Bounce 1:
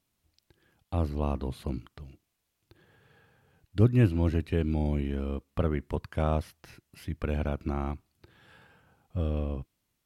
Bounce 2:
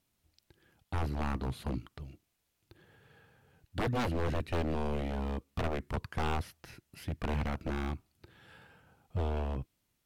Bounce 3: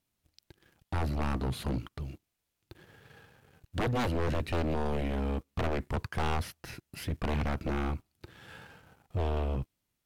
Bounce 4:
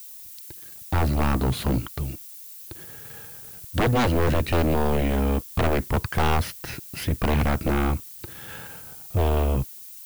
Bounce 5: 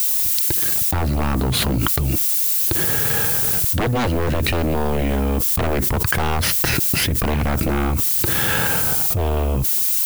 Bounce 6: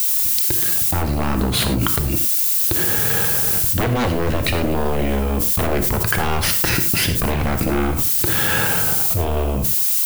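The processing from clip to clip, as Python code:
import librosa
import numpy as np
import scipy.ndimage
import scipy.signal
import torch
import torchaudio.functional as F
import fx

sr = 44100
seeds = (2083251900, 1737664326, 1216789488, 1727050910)

y1 = fx.notch(x, sr, hz=1100.0, q=22.0)
y1 = 10.0 ** (-26.0 / 20.0) * (np.abs((y1 / 10.0 ** (-26.0 / 20.0) + 3.0) % 4.0 - 2.0) - 1.0)
y2 = fx.leveller(y1, sr, passes=2)
y3 = fx.dmg_noise_colour(y2, sr, seeds[0], colour='violet', level_db=-51.0)
y3 = y3 * 10.0 ** (9.0 / 20.0)
y4 = fx.env_flatten(y3, sr, amount_pct=100)
y5 = fx.rev_gated(y4, sr, seeds[1], gate_ms=130, shape='flat', drr_db=6.5)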